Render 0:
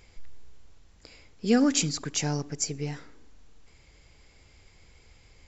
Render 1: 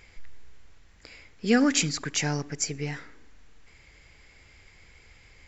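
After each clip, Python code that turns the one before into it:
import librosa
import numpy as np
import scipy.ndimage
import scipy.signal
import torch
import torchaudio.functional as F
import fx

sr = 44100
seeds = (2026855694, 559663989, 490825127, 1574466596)

y = fx.peak_eq(x, sr, hz=1900.0, db=8.5, octaves=1.1)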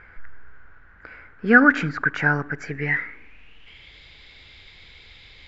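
y = fx.filter_sweep_lowpass(x, sr, from_hz=1500.0, to_hz=3700.0, start_s=2.51, end_s=3.99, q=7.5)
y = y * 10.0 ** (3.5 / 20.0)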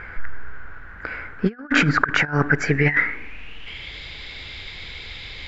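y = fx.over_compress(x, sr, threshold_db=-26.0, ratio=-0.5)
y = y * 10.0 ** (6.5 / 20.0)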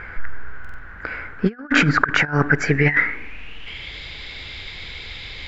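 y = fx.buffer_glitch(x, sr, at_s=(0.6,), block=2048, repeats=3)
y = y * 10.0 ** (1.5 / 20.0)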